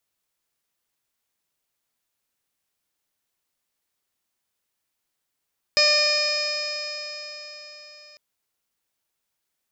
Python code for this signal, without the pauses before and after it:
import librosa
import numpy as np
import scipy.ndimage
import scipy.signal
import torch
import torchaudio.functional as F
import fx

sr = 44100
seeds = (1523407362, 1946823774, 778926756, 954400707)

y = fx.additive_stiff(sr, length_s=2.4, hz=595.0, level_db=-22.5, upper_db=(-9.0, -5.0, 0.5, -14.0, -11, -3.5, 6.0, -10, -14.5, -15), decay_s=4.47, stiffness=0.0022)